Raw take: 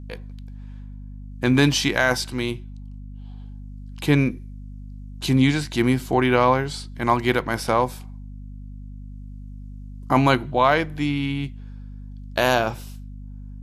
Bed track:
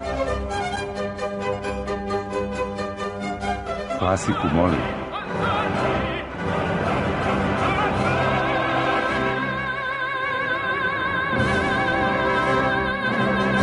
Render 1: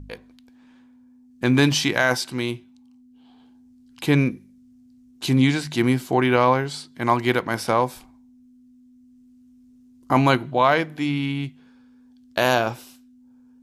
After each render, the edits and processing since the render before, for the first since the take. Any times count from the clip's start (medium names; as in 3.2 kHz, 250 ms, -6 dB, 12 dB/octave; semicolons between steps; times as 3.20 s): de-hum 50 Hz, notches 4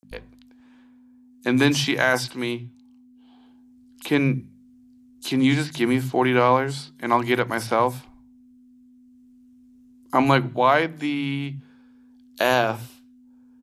three bands offset in time highs, mids, lows 30/110 ms, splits 160/5500 Hz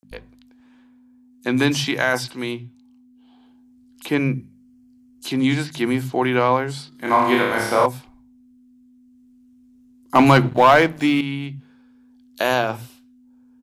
4.08–5.26 s: band-stop 3.7 kHz, Q 7.7; 6.89–7.86 s: flutter echo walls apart 4.9 m, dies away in 0.83 s; 10.15–11.21 s: waveshaping leveller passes 2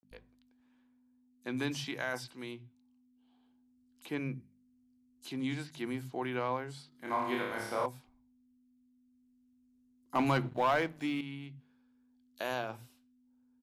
trim -16.5 dB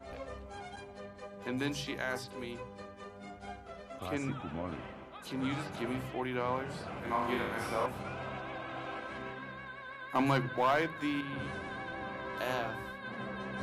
add bed track -20 dB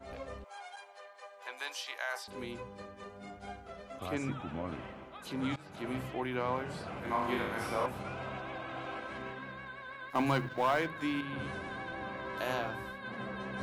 0.44–2.28 s: high-pass 640 Hz 24 dB/octave; 5.56–5.97 s: fade in, from -20.5 dB; 10.10–10.86 s: companding laws mixed up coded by A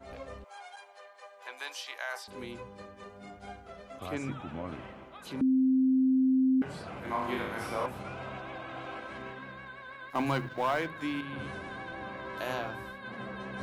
5.41–6.62 s: bleep 261 Hz -21.5 dBFS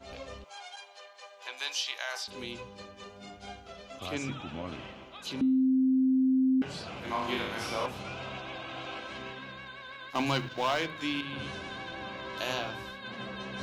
high-order bell 4.2 kHz +9.5 dB; de-hum 153.3 Hz, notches 26